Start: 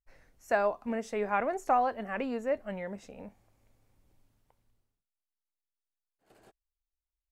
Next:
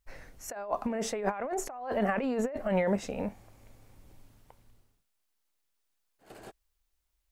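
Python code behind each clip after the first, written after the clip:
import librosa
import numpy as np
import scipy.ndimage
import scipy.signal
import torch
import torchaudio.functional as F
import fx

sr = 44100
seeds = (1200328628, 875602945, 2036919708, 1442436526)

y = fx.dynamic_eq(x, sr, hz=680.0, q=0.76, threshold_db=-41.0, ratio=4.0, max_db=4)
y = fx.over_compress(y, sr, threshold_db=-37.0, ratio=-1.0)
y = y * 10.0 ** (4.5 / 20.0)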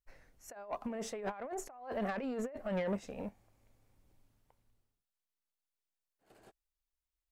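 y = 10.0 ** (-24.5 / 20.0) * np.tanh(x / 10.0 ** (-24.5 / 20.0))
y = fx.upward_expand(y, sr, threshold_db=-47.0, expansion=1.5)
y = y * 10.0 ** (-4.0 / 20.0)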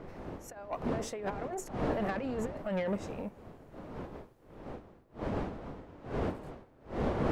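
y = fx.dmg_wind(x, sr, seeds[0], corner_hz=510.0, level_db=-41.0)
y = y * 10.0 ** (2.0 / 20.0)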